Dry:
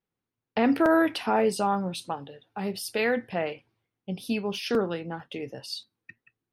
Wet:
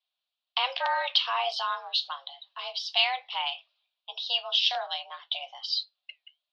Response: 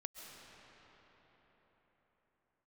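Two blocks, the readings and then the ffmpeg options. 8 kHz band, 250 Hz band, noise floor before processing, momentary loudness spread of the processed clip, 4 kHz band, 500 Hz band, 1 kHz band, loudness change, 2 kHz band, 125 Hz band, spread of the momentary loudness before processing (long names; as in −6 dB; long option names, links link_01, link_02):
−10.0 dB, below −40 dB, below −85 dBFS, 14 LU, +12.5 dB, −12.0 dB, −0.5 dB, −0.5 dB, −0.5 dB, below −40 dB, 15 LU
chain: -af "flanger=delay=3.6:depth=3.8:regen=-80:speed=1.2:shape=triangular,highpass=frequency=420:width_type=q:width=0.5412,highpass=frequency=420:width_type=q:width=1.307,lowpass=frequency=3600:width_type=q:width=0.5176,lowpass=frequency=3600:width_type=q:width=0.7071,lowpass=frequency=3600:width_type=q:width=1.932,afreqshift=260,aexciter=amount=14.5:drive=4.5:freq=3000"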